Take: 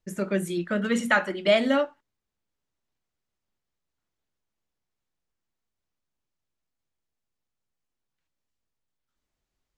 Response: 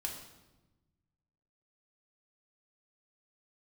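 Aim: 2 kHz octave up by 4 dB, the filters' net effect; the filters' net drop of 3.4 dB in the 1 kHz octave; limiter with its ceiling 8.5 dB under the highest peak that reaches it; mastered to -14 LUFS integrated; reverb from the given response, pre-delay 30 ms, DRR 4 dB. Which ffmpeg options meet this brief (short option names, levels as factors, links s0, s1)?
-filter_complex "[0:a]equalizer=f=1000:t=o:g=-9,equalizer=f=2000:t=o:g=8.5,alimiter=limit=0.168:level=0:latency=1,asplit=2[s0][s1];[1:a]atrim=start_sample=2205,adelay=30[s2];[s1][s2]afir=irnorm=-1:irlink=0,volume=0.631[s3];[s0][s3]amix=inputs=2:normalize=0,volume=3.55"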